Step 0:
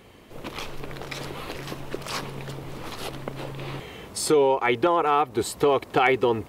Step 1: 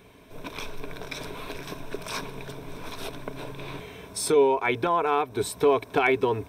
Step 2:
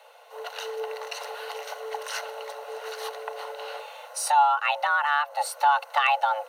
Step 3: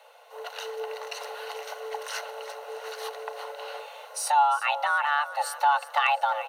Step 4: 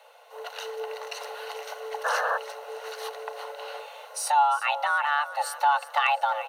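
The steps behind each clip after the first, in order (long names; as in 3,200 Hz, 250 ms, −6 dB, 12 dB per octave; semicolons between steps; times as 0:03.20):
EQ curve with evenly spaced ripples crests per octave 1.6, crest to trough 9 dB; level −3 dB
frequency shifter +430 Hz
repeating echo 350 ms, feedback 35%, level −15 dB; level −1.5 dB
sound drawn into the spectrogram noise, 0:02.04–0:02.38, 450–1,800 Hz −26 dBFS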